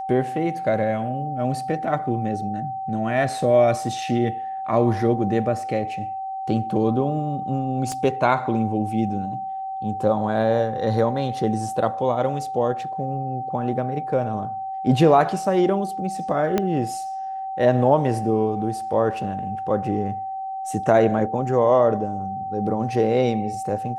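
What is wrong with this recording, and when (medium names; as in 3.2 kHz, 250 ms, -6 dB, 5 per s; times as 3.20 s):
whine 770 Hz -27 dBFS
7.92 s: pop -16 dBFS
16.58 s: pop -8 dBFS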